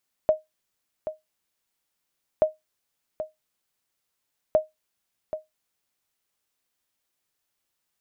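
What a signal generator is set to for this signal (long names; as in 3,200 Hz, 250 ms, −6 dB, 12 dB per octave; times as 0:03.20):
ping with an echo 623 Hz, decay 0.17 s, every 2.13 s, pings 3, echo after 0.78 s, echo −11.5 dB −10.5 dBFS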